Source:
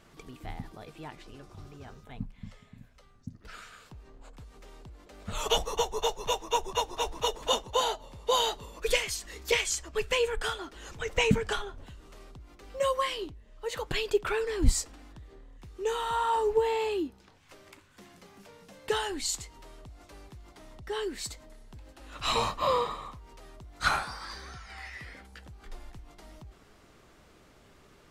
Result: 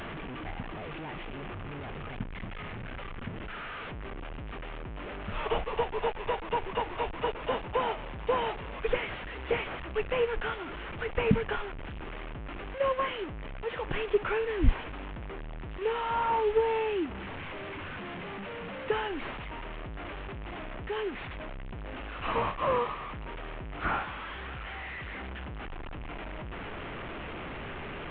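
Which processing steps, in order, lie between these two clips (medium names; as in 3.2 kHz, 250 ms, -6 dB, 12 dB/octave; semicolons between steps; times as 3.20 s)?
one-bit delta coder 16 kbps, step -33 dBFS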